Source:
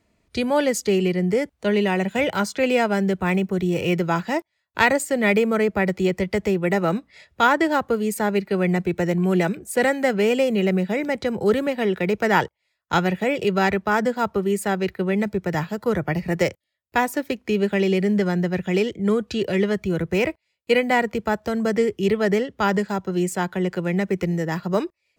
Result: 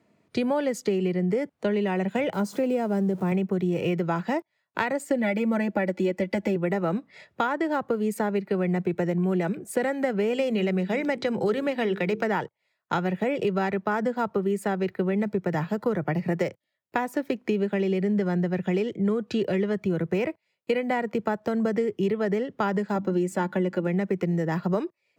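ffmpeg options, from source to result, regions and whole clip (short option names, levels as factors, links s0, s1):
-filter_complex "[0:a]asettb=1/sr,asplit=3[s0][s1][s2];[s0]atrim=end=2.334[s3];[s1]atrim=start=2.33:end=3.32,asetpts=PTS-STARTPTS,afade=t=in:d=0.004:c=qsin,afade=t=out:st=0.986:d=0.004:c=qsin,aeval=exprs='val(0)+0.5*0.0224*sgn(val(0))':c=same,highpass=130,equalizer=f=2100:t=o:w=2.8:g=-12[s4];[s2]atrim=start=3.316[s5];[s3][s4]acrossfade=d=0.004:c1=hsin:c2=qsin[s6];[s6][s5]acrossfade=d=0.004:c1=qsin:c2=hsin,asettb=1/sr,asplit=3[s7][s8][s9];[s7]atrim=end=5.104[s10];[s8]atrim=start=5.1:end=6.56,asetpts=PTS-STARTPTS,afade=t=in:d=0.004:c=qsin,afade=t=out:st=1.456:d=0.004:c=qsin,bandreject=f=1200:w=5.1,aecho=1:1:3.5:0.84,atrim=end_sample=64386[s11];[s9]atrim=start=6.556[s12];[s10][s11]acrossfade=d=0.004:c1=hsin:c2=qsin[s13];[s13][s12]acrossfade=d=0.004:c1=qsin:c2=hsin,asettb=1/sr,asplit=3[s14][s15][s16];[s14]atrim=end=10.334[s17];[s15]atrim=start=10.33:end=12.24,asetpts=PTS-STARTPTS,afade=t=in:d=0.004:c=qsin,afade=t=out:st=1.906:d=0.004:c=qsin,equalizer=f=4200:t=o:w=2.6:g=7,bandreject=f=50:t=h:w=6,bandreject=f=100:t=h:w=6,bandreject=f=150:t=h:w=6,bandreject=f=200:t=h:w=6,bandreject=f=250:t=h:w=6,bandreject=f=300:t=h:w=6,bandreject=f=350:t=h:w=6,bandreject=f=400:t=h:w=6,bandreject=f=450:t=h:w=6[s18];[s16]atrim=start=12.236[s19];[s17][s18]acrossfade=d=0.004:c1=hsin:c2=qsin[s20];[s20][s19]acrossfade=d=0.004:c1=qsin:c2=hsin,asettb=1/sr,asplit=3[s21][s22][s23];[s21]atrim=end=22.954[s24];[s22]atrim=start=22.95:end=23.87,asetpts=PTS-STARTPTS,afade=t=in:d=0.004:c=qsin,afade=t=out:st=0.916:d=0.004:c=qsin,lowshelf=f=220:g=6,bandreject=f=50:t=h:w=6,bandreject=f=100:t=h:w=6,bandreject=f=150:t=h:w=6,bandreject=f=200:t=h:w=6,bandreject=f=250:t=h:w=6,bandreject=f=300:t=h:w=6,aecho=1:1:3.5:0.58,atrim=end_sample=40572[s25];[s23]atrim=start=23.866[s26];[s24][s25]acrossfade=d=0.004:c1=hsin:c2=qsin[s27];[s27][s26]acrossfade=d=0.004:c1=qsin:c2=hsin,highpass=f=120:w=0.5412,highpass=f=120:w=1.3066,acompressor=threshold=0.0562:ratio=6,highshelf=f=2400:g=-10,volume=1.5"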